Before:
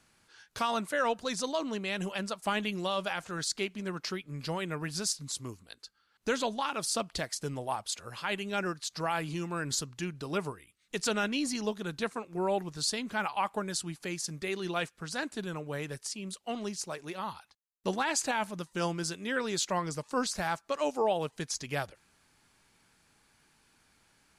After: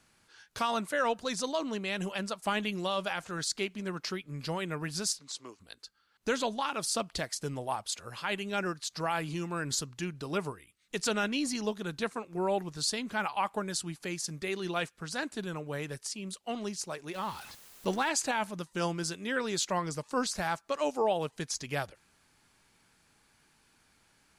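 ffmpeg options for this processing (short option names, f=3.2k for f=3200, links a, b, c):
-filter_complex "[0:a]asplit=3[a][b][c];[a]afade=t=out:st=5.18:d=0.02[d];[b]highpass=400,lowpass=5.9k,afade=t=in:st=5.18:d=0.02,afade=t=out:st=5.59:d=0.02[e];[c]afade=t=in:st=5.59:d=0.02[f];[d][e][f]amix=inputs=3:normalize=0,asettb=1/sr,asplit=3[g][h][i];[g]atrim=end=17.144[j];[h]atrim=start=17.14:end=18.09,asetpts=PTS-STARTPTS,afade=t=in:d=0.004:c=qsin,afade=t=out:st=0.946:d=0.004:c=qsin,aeval=exprs='val(0)+0.5*0.00708*sgn(val(0))':c=same[k];[i]atrim=start=18.086[l];[j][k]acrossfade=d=0.004:c1=hsin:c2=qsin[m];[m][l]acrossfade=d=0.004:c1=qsin:c2=hsin"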